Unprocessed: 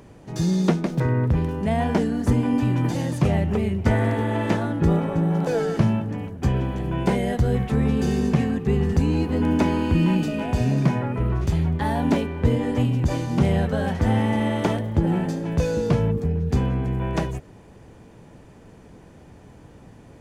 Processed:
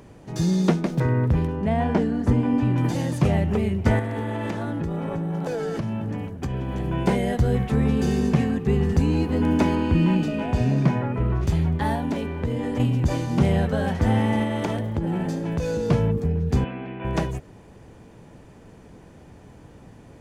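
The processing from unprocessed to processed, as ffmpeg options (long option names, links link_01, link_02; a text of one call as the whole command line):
ffmpeg -i in.wav -filter_complex "[0:a]asettb=1/sr,asplit=3[link_01][link_02][link_03];[link_01]atrim=end=1.474[link_04];[link_02]atrim=start=1.47:end=2.78,asetpts=PTS-STARTPTS,afade=type=in:duration=0.004:curve=qsin,afade=type=out:start_time=1.306:duration=0.004:curve=qsin,lowpass=frequency=2500:poles=1[link_05];[link_03]atrim=start=2.776[link_06];[link_04][link_05]acrossfade=duration=0.004:curve1=hsin:curve2=qsin[link_07];[link_07][link_06]acrossfade=duration=0.004:curve1=qsin:curve2=hsin,asettb=1/sr,asplit=3[link_08][link_09][link_10];[link_08]atrim=end=3.994[link_11];[link_09]atrim=start=3.99:end=6.76,asetpts=PTS-STARTPTS,afade=type=in:duration=0.004:curve=qsin,afade=type=out:start_time=2.766:duration=0.004:curve=qsin,acompressor=threshold=-23dB:ratio=10:attack=3.2:release=140:knee=1:detection=peak[link_12];[link_10]atrim=start=6.756[link_13];[link_11][link_12]acrossfade=duration=0.004:curve1=hsin:curve2=qsin[link_14];[link_14][link_13]acrossfade=duration=0.004:curve1=qsin:curve2=hsin,asettb=1/sr,asplit=3[link_15][link_16][link_17];[link_15]atrim=end=9.754[link_18];[link_16]atrim=start=9.75:end=11.43,asetpts=PTS-STARTPTS,afade=type=in:duration=0.004:curve=qsin,afade=type=out:start_time=1.676:duration=0.004:curve=qsin,highshelf=frequency=6500:gain=-9[link_19];[link_17]atrim=start=11.426[link_20];[link_18][link_19]acrossfade=duration=0.004:curve1=hsin:curve2=qsin[link_21];[link_21][link_20]acrossfade=duration=0.004:curve1=qsin:curve2=hsin,asettb=1/sr,asplit=3[link_22][link_23][link_24];[link_22]atrim=end=11.954[link_25];[link_23]atrim=start=11.95:end=12.8,asetpts=PTS-STARTPTS,afade=type=in:duration=0.004:curve=qsin,afade=type=out:start_time=0.846:duration=0.004:curve=qsin,acompressor=threshold=-23dB:ratio=3:attack=3.2:release=140:knee=1:detection=peak[link_26];[link_24]atrim=start=12.796[link_27];[link_25][link_26]acrossfade=duration=0.004:curve1=hsin:curve2=qsin[link_28];[link_28][link_27]acrossfade=duration=0.004:curve1=qsin:curve2=hsin,asettb=1/sr,asplit=3[link_29][link_30][link_31];[link_29]atrim=end=14.434[link_32];[link_30]atrim=start=14.43:end=15.9,asetpts=PTS-STARTPTS,afade=type=in:duration=0.004:curve=qsin,afade=type=out:start_time=1.466:duration=0.004:curve=qsin,acompressor=threshold=-21dB:ratio=4:attack=3.2:release=140:knee=1:detection=peak[link_33];[link_31]atrim=start=15.896[link_34];[link_32][link_33]acrossfade=duration=0.004:curve1=hsin:curve2=qsin[link_35];[link_35][link_34]acrossfade=duration=0.004:curve1=qsin:curve2=hsin,asettb=1/sr,asplit=3[link_36][link_37][link_38];[link_36]atrim=end=16.644[link_39];[link_37]atrim=start=16.64:end=17.05,asetpts=PTS-STARTPTS,afade=type=in:duration=0.004:curve=qsin,afade=type=out:start_time=0.406:duration=0.004:curve=qsin,highpass=290,equalizer=frequency=460:width_type=q:width=4:gain=-7,equalizer=frequency=1000:width_type=q:width=4:gain=-4,equalizer=frequency=2600:width_type=q:width=4:gain=6,lowpass=frequency=3300:width=0.5412,lowpass=frequency=3300:width=1.3066[link_40];[link_38]atrim=start=17.046[link_41];[link_39][link_40]acrossfade=duration=0.004:curve1=hsin:curve2=qsin[link_42];[link_42][link_41]acrossfade=duration=0.004:curve1=qsin:curve2=hsin" out.wav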